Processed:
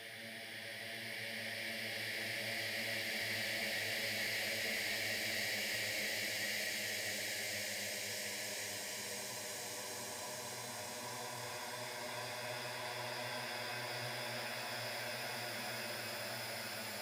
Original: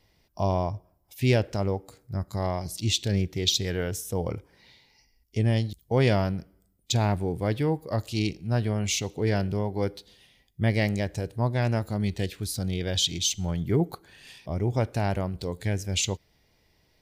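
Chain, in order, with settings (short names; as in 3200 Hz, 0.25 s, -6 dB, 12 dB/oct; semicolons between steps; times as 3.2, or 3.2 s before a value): differentiator; Paulstretch 12×, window 1.00 s, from 10.42; one-sided clip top -41 dBFS; gain +5.5 dB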